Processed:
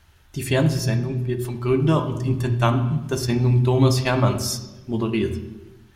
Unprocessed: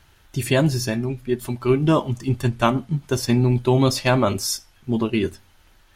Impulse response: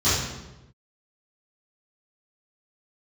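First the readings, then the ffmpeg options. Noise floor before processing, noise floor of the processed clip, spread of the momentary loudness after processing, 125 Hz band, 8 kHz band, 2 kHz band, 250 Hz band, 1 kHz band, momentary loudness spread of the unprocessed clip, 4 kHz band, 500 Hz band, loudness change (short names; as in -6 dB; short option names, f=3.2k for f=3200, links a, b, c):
-56 dBFS, -53 dBFS, 10 LU, +2.5 dB, -2.5 dB, -2.0 dB, -1.5 dB, -2.0 dB, 8 LU, -2.0 dB, -1.5 dB, 0.0 dB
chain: -filter_complex "[0:a]asplit=2[a][b];[1:a]atrim=start_sample=2205,asetrate=41013,aresample=44100,lowpass=4.3k[c];[b][c]afir=irnorm=-1:irlink=0,volume=-25.5dB[d];[a][d]amix=inputs=2:normalize=0,volume=-2.5dB"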